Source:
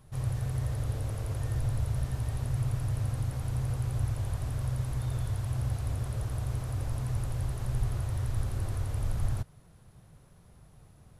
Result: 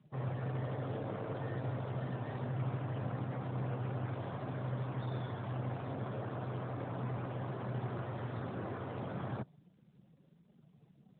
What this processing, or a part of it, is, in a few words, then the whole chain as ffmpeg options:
mobile call with aggressive noise cancelling: -af "highpass=frequency=170:width=0.5412,highpass=frequency=170:width=1.3066,afftdn=noise_reduction=18:noise_floor=-54,volume=5dB" -ar 8000 -c:a libopencore_amrnb -b:a 12200

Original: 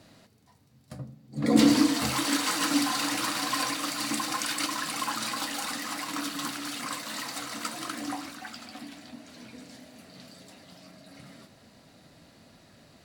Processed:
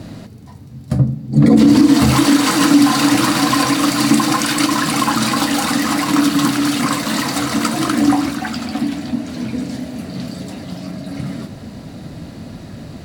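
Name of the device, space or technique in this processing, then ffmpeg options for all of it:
mastering chain: -af "equalizer=frequency=540:width_type=o:width=1.5:gain=-3,acompressor=threshold=-32dB:ratio=2,tiltshelf=frequency=670:gain=7,alimiter=level_in=21.5dB:limit=-1dB:release=50:level=0:latency=1,volume=-1dB"

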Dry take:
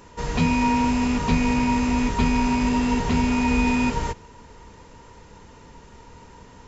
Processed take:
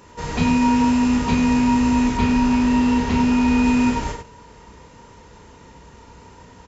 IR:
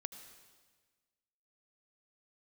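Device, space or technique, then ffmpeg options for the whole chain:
slapback doubling: -filter_complex "[0:a]highpass=40,asplit=3[link_01][link_02][link_03];[link_02]adelay=33,volume=-4dB[link_04];[link_03]adelay=97,volume=-7dB[link_05];[link_01][link_04][link_05]amix=inputs=3:normalize=0,asettb=1/sr,asplit=3[link_06][link_07][link_08];[link_06]atrim=end=2.174[link_09];[link_07]atrim=start=2.17:end=3.63,asetpts=PTS-STARTPTS,afade=type=in:duration=0.004:curve=qsin,afade=type=out:start_time=1.456:duration=0.004:curve=qsin,acrossover=split=6900[link_10][link_11];[link_11]acompressor=threshold=-54dB:ratio=4:attack=1:release=60[link_12];[link_10][link_12]amix=inputs=2:normalize=0[link_13];[link_08]atrim=start=3.626[link_14];[link_09][link_13]acrossfade=duration=0.004:curve1=hsin:curve2=qsin[link_15];[link_15][link_14]acrossfade=duration=0.004:curve1=qsin:curve2=hsin"

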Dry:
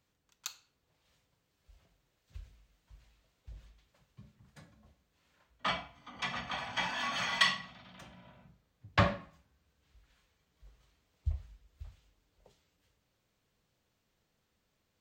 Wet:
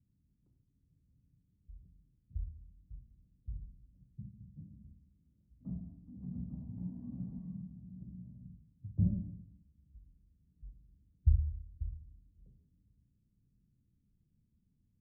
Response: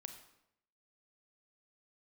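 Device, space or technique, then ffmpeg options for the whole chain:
club heard from the street: -filter_complex "[0:a]alimiter=limit=-23.5dB:level=0:latency=1:release=83,lowpass=frequency=230:width=0.5412,lowpass=frequency=230:width=1.3066[link_01];[1:a]atrim=start_sample=2205[link_02];[link_01][link_02]afir=irnorm=-1:irlink=0,volume=13.5dB"

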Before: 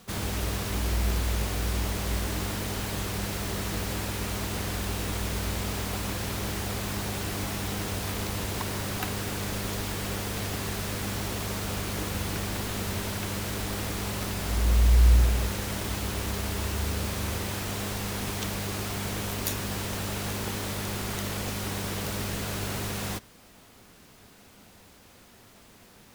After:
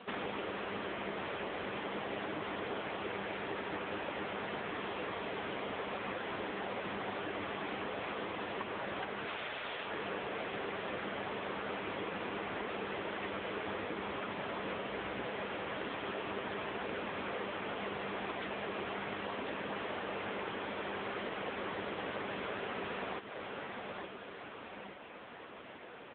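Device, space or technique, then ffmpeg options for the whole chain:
voicemail: -filter_complex "[0:a]asplit=3[link_01][link_02][link_03];[link_01]afade=type=out:start_time=9.25:duration=0.02[link_04];[link_02]aemphasis=mode=production:type=riaa,afade=type=in:start_time=9.25:duration=0.02,afade=type=out:start_time=9.84:duration=0.02[link_05];[link_03]afade=type=in:start_time=9.84:duration=0.02[link_06];[link_04][link_05][link_06]amix=inputs=3:normalize=0,highpass=330,lowpass=2800,aecho=1:1:871|1742|2613|3484:0.2|0.0938|0.0441|0.0207,acompressor=threshold=-44dB:ratio=6,volume=10.5dB" -ar 8000 -c:a libopencore_amrnb -b:a 6700

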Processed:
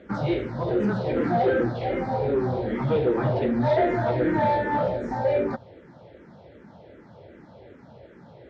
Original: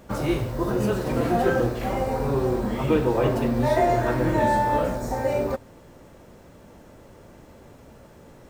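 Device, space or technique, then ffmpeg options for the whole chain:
barber-pole phaser into a guitar amplifier: -filter_complex "[0:a]asplit=2[link_01][link_02];[link_02]afreqshift=-2.6[link_03];[link_01][link_03]amix=inputs=2:normalize=1,asoftclip=type=tanh:threshold=-19dB,highpass=100,equalizer=frequency=260:width_type=q:width=4:gain=-3,equalizer=frequency=1100:width_type=q:width=4:gain=-8,equalizer=frequency=2700:width_type=q:width=4:gain=-8,lowpass=frequency=3900:width=0.5412,lowpass=frequency=3900:width=1.3066,volume=5dB"

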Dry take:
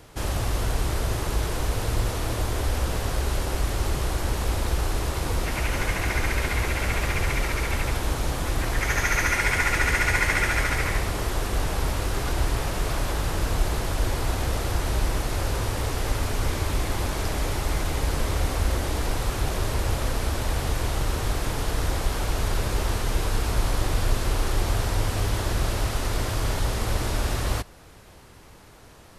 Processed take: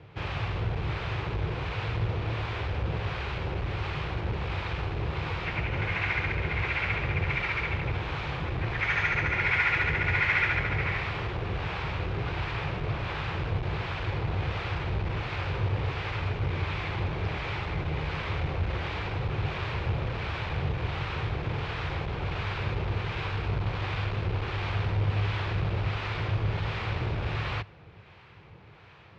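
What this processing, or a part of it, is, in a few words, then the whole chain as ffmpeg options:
guitar amplifier with harmonic tremolo: -filter_complex "[0:a]acrossover=split=750[link_01][link_02];[link_01]aeval=exprs='val(0)*(1-0.5/2+0.5/2*cos(2*PI*1.4*n/s))':channel_layout=same[link_03];[link_02]aeval=exprs='val(0)*(1-0.5/2-0.5/2*cos(2*PI*1.4*n/s))':channel_layout=same[link_04];[link_03][link_04]amix=inputs=2:normalize=0,asoftclip=type=tanh:threshold=-18.5dB,highpass=76,equalizer=frequency=100:width_type=q:width=4:gain=7,equalizer=frequency=150:width_type=q:width=4:gain=6,equalizer=frequency=260:width_type=q:width=4:gain=-10,equalizer=frequency=620:width_type=q:width=4:gain=-4,equalizer=frequency=2400:width_type=q:width=4:gain=6,lowpass=frequency=3600:width=0.5412,lowpass=frequency=3600:width=1.3066"

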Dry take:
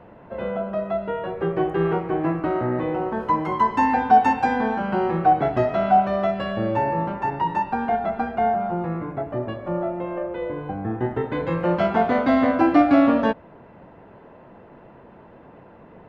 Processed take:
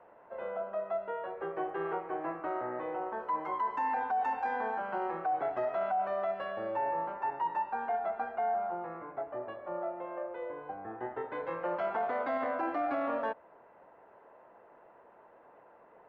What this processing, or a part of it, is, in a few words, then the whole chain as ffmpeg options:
DJ mixer with the lows and highs turned down: -filter_complex "[0:a]acrossover=split=440 2100:gain=0.0708 1 0.224[link_01][link_02][link_03];[link_01][link_02][link_03]amix=inputs=3:normalize=0,alimiter=limit=-18dB:level=0:latency=1:release=11,lowshelf=frequency=130:gain=3.5,volume=-7dB"

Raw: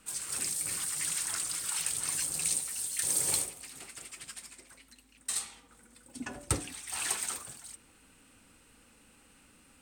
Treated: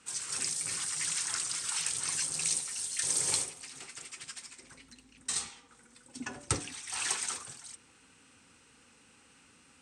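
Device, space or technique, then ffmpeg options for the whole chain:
car door speaker: -filter_complex "[0:a]highpass=98,equalizer=frequency=200:width_type=q:width=4:gain=-5,equalizer=frequency=310:width_type=q:width=4:gain=-4,equalizer=frequency=620:width_type=q:width=4:gain=-7,equalizer=frequency=5800:width_type=q:width=4:gain=4,lowpass=frequency=8600:width=0.5412,lowpass=frequency=8600:width=1.3066,asettb=1/sr,asplit=3[link_01][link_02][link_03];[link_01]atrim=end=4.634[link_04];[link_02]atrim=start=4.63:end=5.49,asetpts=PTS-STARTPTS,afade=type=in:duration=0.004:curve=qsin,afade=type=out:start_time=0.856:duration=0.004:curve=qsin,lowshelf=frequency=420:gain=10[link_05];[link_03]atrim=start=5.486[link_06];[link_04][link_05]acrossfade=duration=0.004:curve1=hsin:curve2=qsin[link_07];[link_07][link_06]acrossfade=duration=0.004:curve1=qsin:curve2=hsin,volume=1.5dB"

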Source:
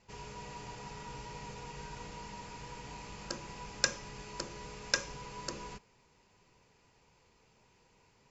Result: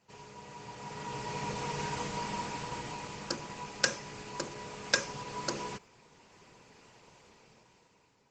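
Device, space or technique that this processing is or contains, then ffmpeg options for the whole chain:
video call: -af "highpass=120,dynaudnorm=framelen=250:gausssize=9:maxgain=14dB,volume=-2dB" -ar 48000 -c:a libopus -b:a 16k

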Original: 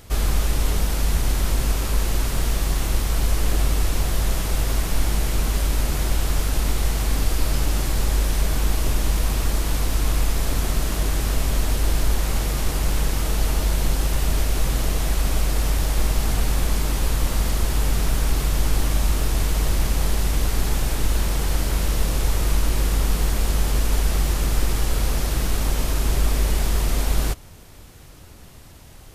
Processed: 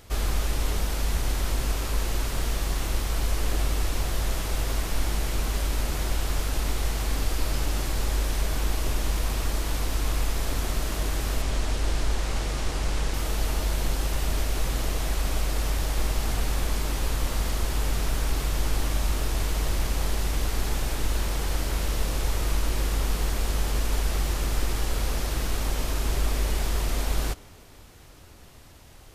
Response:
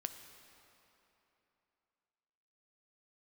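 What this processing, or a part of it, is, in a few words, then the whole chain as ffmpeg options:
filtered reverb send: -filter_complex "[0:a]asplit=2[link_01][link_02];[link_02]highpass=frequency=150:width=0.5412,highpass=frequency=150:width=1.3066,lowpass=8300[link_03];[1:a]atrim=start_sample=2205[link_04];[link_03][link_04]afir=irnorm=-1:irlink=0,volume=-7.5dB[link_05];[link_01][link_05]amix=inputs=2:normalize=0,asettb=1/sr,asplit=3[link_06][link_07][link_08];[link_06]atrim=end=11.424[link_09];[link_07]atrim=start=11.42:end=13.14,asetpts=PTS-STARTPTS,afade=type=in:duration=0.004:curve=qsin,afade=type=out:start_time=1.716:duration=0.004:curve=qsin,lowpass=9000[link_10];[link_08]atrim=start=13.136[link_11];[link_09][link_10]acrossfade=duration=0.004:curve1=hsin:curve2=qsin[link_12];[link_12][link_11]acrossfade=duration=0.004:curve1=qsin:curve2=hsin,volume=-5.5dB"

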